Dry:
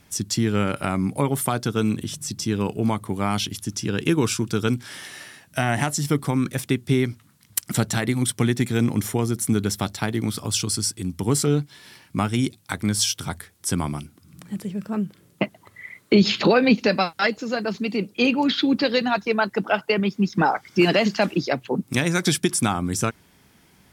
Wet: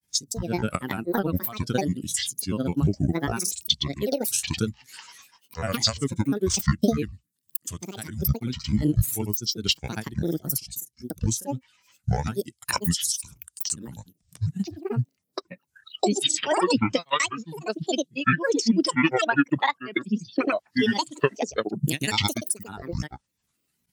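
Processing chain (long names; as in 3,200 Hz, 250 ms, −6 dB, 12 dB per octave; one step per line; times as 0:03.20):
first-order pre-emphasis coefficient 0.8
transient designer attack +7 dB, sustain −3 dB
downward compressor 12 to 1, threshold −27 dBFS, peak gain reduction 18 dB
granular cloud, pitch spread up and down by 12 semitones
every bin expanded away from the loudest bin 1.5 to 1
level +5.5 dB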